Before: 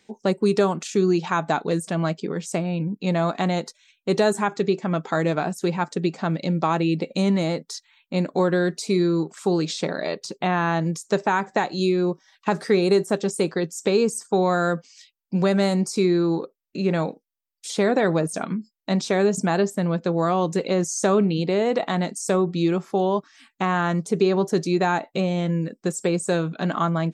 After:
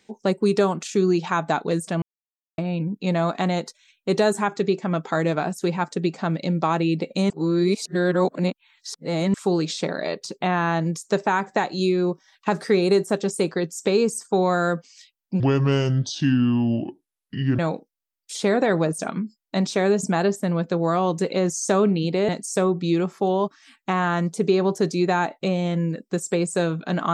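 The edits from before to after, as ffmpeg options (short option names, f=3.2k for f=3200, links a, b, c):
-filter_complex "[0:a]asplit=8[a][b][c][d][e][f][g][h];[a]atrim=end=2.02,asetpts=PTS-STARTPTS,afade=t=out:st=2.016:d=0.004:c=hsin[i];[b]atrim=start=2.02:end=2.58,asetpts=PTS-STARTPTS,volume=0[j];[c]atrim=start=2.58:end=7.302,asetpts=PTS-STARTPTS,afade=t=in:d=0.004:c=hsin[k];[d]atrim=start=7.298:end=9.342,asetpts=PTS-STARTPTS,areverse[l];[e]atrim=start=9.338:end=15.404[m];[f]atrim=start=15.4:end=16.93,asetpts=PTS-STARTPTS,asetrate=30870,aresample=44100[n];[g]atrim=start=16.926:end=21.632[o];[h]atrim=start=22.008[p];[i][j][k]concat=n=3:v=0:a=1[q];[q][l]acrossfade=d=0.004:c1=hsin:c2=hsin[r];[r][m]acrossfade=d=0.004:c1=hsin:c2=hsin[s];[s][n]acrossfade=d=0.004:c1=hsin:c2=hsin[t];[t][o]acrossfade=d=0.004:c1=hsin:c2=hsin[u];[u][p]acrossfade=d=0.004:c1=hsin:c2=hsin"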